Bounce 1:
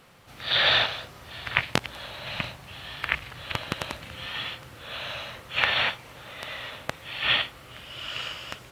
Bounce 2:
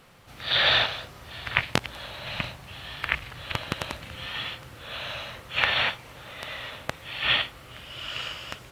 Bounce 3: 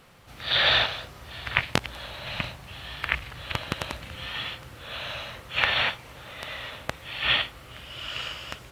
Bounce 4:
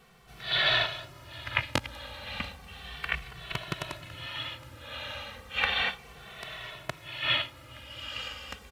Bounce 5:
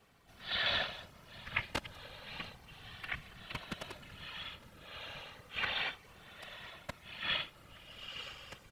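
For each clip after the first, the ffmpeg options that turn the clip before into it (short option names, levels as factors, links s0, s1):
-af "lowshelf=f=62:g=6"
-af "equalizer=f=61:t=o:w=0.44:g=5"
-filter_complex "[0:a]asplit=2[s0][s1];[s1]adelay=2.2,afreqshift=-0.33[s2];[s0][s2]amix=inputs=2:normalize=1,volume=0.891"
-af "afftfilt=real='hypot(re,im)*cos(2*PI*random(0))':imag='hypot(re,im)*sin(2*PI*random(1))':win_size=512:overlap=0.75,volume=0.794"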